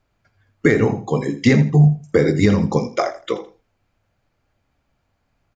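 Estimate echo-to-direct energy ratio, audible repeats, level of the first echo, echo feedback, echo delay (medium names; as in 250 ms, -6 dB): -14.5 dB, 2, -14.5 dB, 22%, 82 ms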